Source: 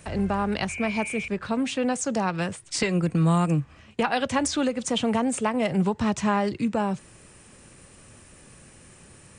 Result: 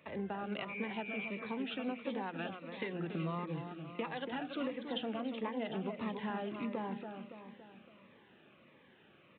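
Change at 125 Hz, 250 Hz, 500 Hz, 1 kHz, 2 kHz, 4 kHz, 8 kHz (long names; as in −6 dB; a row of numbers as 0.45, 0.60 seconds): −17.5 dB, −14.5 dB, −13.0 dB, −14.5 dB, −12.0 dB, −13.0 dB, below −40 dB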